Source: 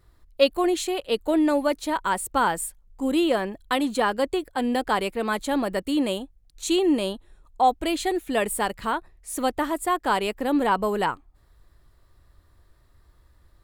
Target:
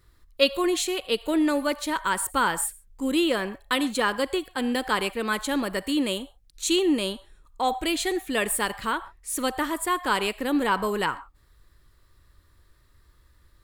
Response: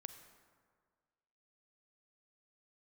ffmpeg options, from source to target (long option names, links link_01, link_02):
-filter_complex "[0:a]asplit=2[link_01][link_02];[link_02]highpass=frequency=690:width=0.5412,highpass=frequency=690:width=1.3066[link_03];[1:a]atrim=start_sample=2205,atrim=end_sample=6615[link_04];[link_03][link_04]afir=irnorm=-1:irlink=0,volume=3dB[link_05];[link_01][link_05]amix=inputs=2:normalize=0,volume=-1.5dB"